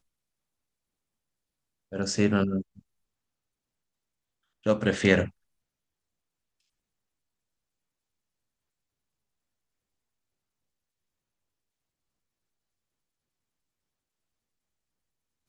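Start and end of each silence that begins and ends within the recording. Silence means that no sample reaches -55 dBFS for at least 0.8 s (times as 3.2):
2.8–4.63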